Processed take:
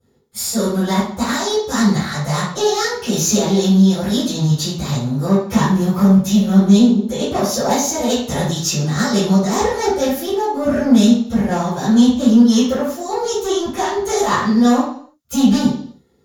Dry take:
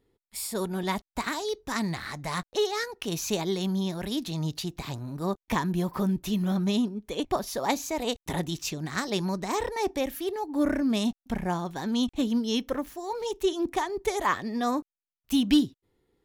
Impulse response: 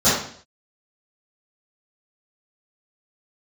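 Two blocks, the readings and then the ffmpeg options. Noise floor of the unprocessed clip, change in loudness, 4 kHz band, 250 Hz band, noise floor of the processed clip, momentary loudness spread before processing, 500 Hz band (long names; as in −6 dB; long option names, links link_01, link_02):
below −85 dBFS, +13.0 dB, +10.0 dB, +14.0 dB, −50 dBFS, 7 LU, +11.5 dB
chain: -filter_complex "[0:a]aeval=exprs='(tanh(15.8*val(0)+0.4)-tanh(0.4))/15.8':channel_layout=same,aemphasis=mode=production:type=cd[link_01];[1:a]atrim=start_sample=2205[link_02];[link_01][link_02]afir=irnorm=-1:irlink=0,volume=-9dB"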